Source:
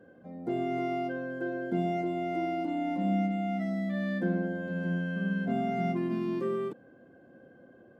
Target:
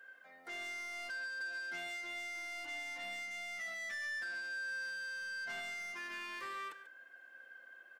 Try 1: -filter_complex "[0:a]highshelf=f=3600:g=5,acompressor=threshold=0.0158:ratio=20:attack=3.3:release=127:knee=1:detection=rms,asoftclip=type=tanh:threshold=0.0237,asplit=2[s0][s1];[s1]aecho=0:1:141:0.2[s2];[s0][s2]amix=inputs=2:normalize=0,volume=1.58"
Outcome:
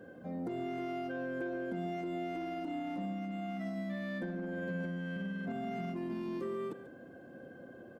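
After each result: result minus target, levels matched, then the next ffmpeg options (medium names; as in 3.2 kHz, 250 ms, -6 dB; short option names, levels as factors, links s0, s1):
2 kHz band -10.0 dB; saturation: distortion -13 dB
-filter_complex "[0:a]highpass=f=1700:t=q:w=2.1,highshelf=f=3600:g=5,acompressor=threshold=0.0158:ratio=20:attack=3.3:release=127:knee=1:detection=rms,asoftclip=type=tanh:threshold=0.0237,asplit=2[s0][s1];[s1]aecho=0:1:141:0.2[s2];[s0][s2]amix=inputs=2:normalize=0,volume=1.58"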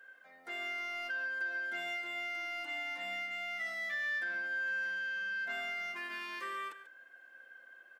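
saturation: distortion -15 dB
-filter_complex "[0:a]highpass=f=1700:t=q:w=2.1,highshelf=f=3600:g=5,acompressor=threshold=0.0158:ratio=20:attack=3.3:release=127:knee=1:detection=rms,asoftclip=type=tanh:threshold=0.00668,asplit=2[s0][s1];[s1]aecho=0:1:141:0.2[s2];[s0][s2]amix=inputs=2:normalize=0,volume=1.58"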